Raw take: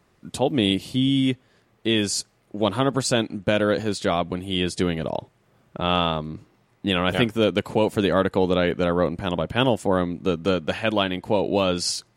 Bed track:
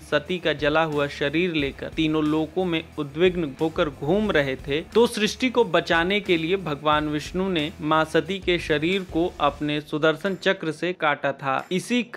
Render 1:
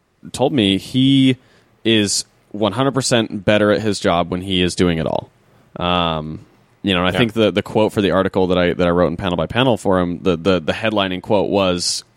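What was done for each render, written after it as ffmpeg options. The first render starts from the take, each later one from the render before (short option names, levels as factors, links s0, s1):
-af "dynaudnorm=f=160:g=3:m=3.16"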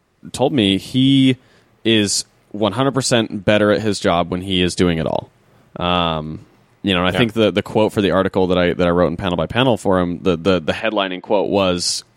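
-filter_complex "[0:a]asettb=1/sr,asplit=3[s0][s1][s2];[s0]atrim=end=10.804[s3];[s1]atrim=start=10.8:end=11.46,asetpts=PTS-STARTPTS,afade=t=in:d=0.004:c=qsin,afade=t=out:st=0.656:d=0.004:c=qsin,highpass=250,lowpass=3800[s4];[s2]atrim=start=11.456[s5];[s3][s4]acrossfade=d=0.004:c1=hsin:c2=qsin[s6];[s6][s5]acrossfade=d=0.004:c1=qsin:c2=hsin"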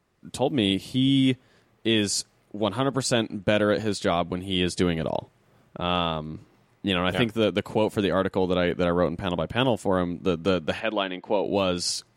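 -af "volume=0.398"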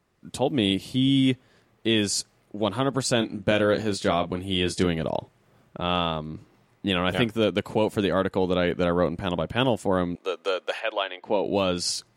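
-filter_complex "[0:a]asettb=1/sr,asplit=3[s0][s1][s2];[s0]atrim=end=3.184[s3];[s1]atrim=start=3.18:end=4.87,asetpts=PTS-STARTPTS,afade=t=in:d=0.004:c=qsin,afade=t=out:st=1.686:d=0.004:c=qsin,asplit=2[s4][s5];[s5]adelay=31,volume=0.316[s6];[s4][s6]amix=inputs=2:normalize=0,atrim=end_sample=74529[s7];[s2]atrim=start=4.866[s8];[s3][s7]acrossfade=d=0.004:c1=hsin:c2=qsin[s9];[s9][s8]acrossfade=d=0.004:c1=qsin:c2=hsin,asettb=1/sr,asplit=3[s10][s11][s12];[s10]atrim=end=10.154[s13];[s11]atrim=start=10.15:end=11.22,asetpts=PTS-STARTPTS,afade=t=in:d=0.004:c=qsin,afade=t=out:st=1.066:d=0.004:c=qsin,highpass=f=460:w=0.5412,highpass=f=460:w=1.3066[s14];[s12]atrim=start=11.216[s15];[s13][s14]acrossfade=d=0.004:c1=hsin:c2=qsin[s16];[s16][s15]acrossfade=d=0.004:c1=qsin:c2=hsin"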